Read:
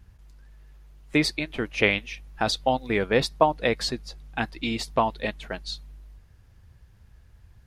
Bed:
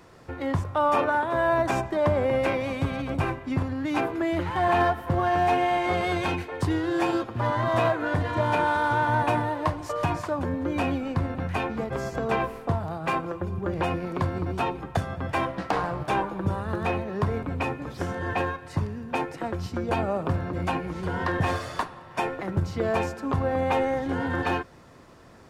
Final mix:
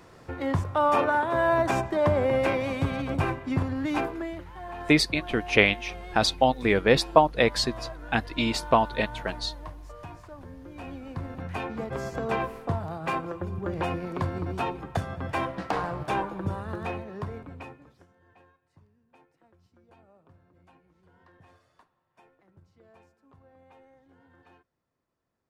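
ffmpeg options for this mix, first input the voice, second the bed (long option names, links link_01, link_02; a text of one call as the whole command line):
ffmpeg -i stem1.wav -i stem2.wav -filter_complex "[0:a]adelay=3750,volume=2dB[link_01];[1:a]volume=14.5dB,afade=type=out:start_time=3.86:duration=0.58:silence=0.141254,afade=type=in:start_time=10.74:duration=1.23:silence=0.188365,afade=type=out:start_time=16.23:duration=1.84:silence=0.0334965[link_02];[link_01][link_02]amix=inputs=2:normalize=0" out.wav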